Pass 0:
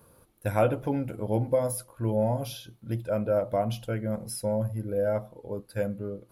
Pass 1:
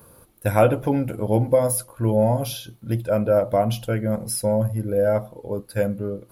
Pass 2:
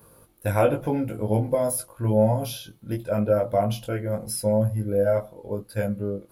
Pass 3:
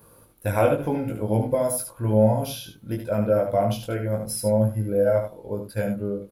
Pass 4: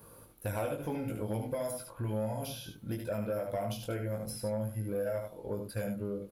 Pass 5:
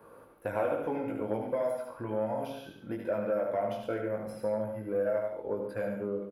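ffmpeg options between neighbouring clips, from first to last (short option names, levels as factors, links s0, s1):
-af "highshelf=f=11000:g=6.5,volume=2.24"
-af "flanger=delay=18.5:depth=2.2:speed=0.87"
-af "aecho=1:1:74:0.447"
-filter_complex "[0:a]acrossover=split=1700|3900[s0][s1][s2];[s0]acompressor=threshold=0.0282:ratio=4[s3];[s1]acompressor=threshold=0.00316:ratio=4[s4];[s2]acompressor=threshold=0.00631:ratio=4[s5];[s3][s4][s5]amix=inputs=3:normalize=0,aeval=exprs='0.126*sin(PI/2*1.41*val(0)/0.126)':c=same,volume=0.376"
-filter_complex "[0:a]acrossover=split=250 2300:gain=0.178 1 0.1[s0][s1][s2];[s0][s1][s2]amix=inputs=3:normalize=0,aecho=1:1:99.13|139.9:0.282|0.316,volume=1.78"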